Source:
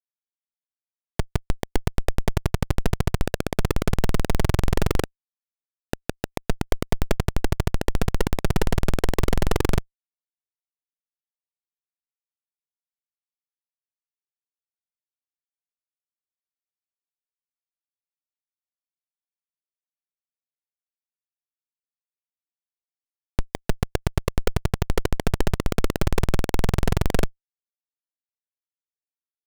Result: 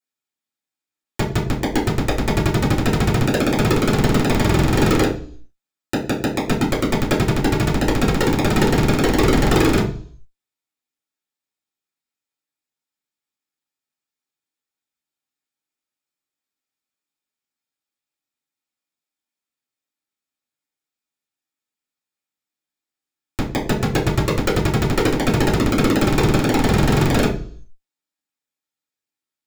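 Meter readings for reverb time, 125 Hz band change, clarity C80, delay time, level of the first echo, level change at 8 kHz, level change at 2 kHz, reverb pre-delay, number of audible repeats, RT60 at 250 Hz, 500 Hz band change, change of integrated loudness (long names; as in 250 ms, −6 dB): 0.50 s, +6.0 dB, 13.5 dB, no echo audible, no echo audible, +7.0 dB, +9.5 dB, 3 ms, no echo audible, 0.65 s, +8.0 dB, +8.0 dB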